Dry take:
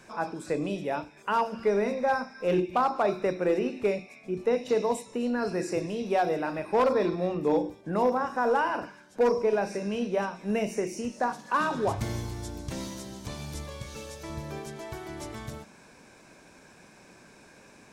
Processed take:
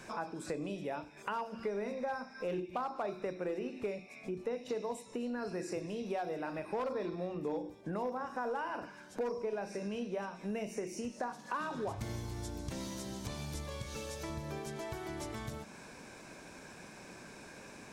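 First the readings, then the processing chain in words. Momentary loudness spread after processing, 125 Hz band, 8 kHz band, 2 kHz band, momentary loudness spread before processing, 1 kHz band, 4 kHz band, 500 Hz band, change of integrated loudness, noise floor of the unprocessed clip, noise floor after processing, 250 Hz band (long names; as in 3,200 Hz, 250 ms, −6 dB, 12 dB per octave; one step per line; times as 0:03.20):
13 LU, −7.0 dB, −5.0 dB, −9.5 dB, 14 LU, −11.0 dB, −6.5 dB, −11.0 dB, −10.5 dB, −54 dBFS, −53 dBFS, −9.0 dB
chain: downward compressor 3 to 1, threshold −42 dBFS, peak gain reduction 16 dB
level +2.5 dB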